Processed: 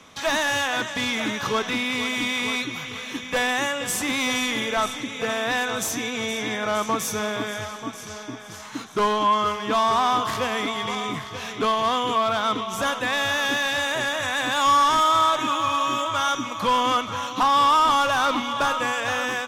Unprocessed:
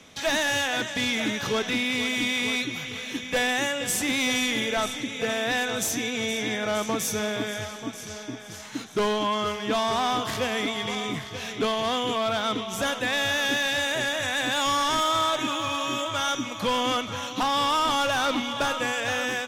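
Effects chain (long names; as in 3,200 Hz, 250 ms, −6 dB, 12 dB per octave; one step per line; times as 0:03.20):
parametric band 1,100 Hz +9 dB 0.66 octaves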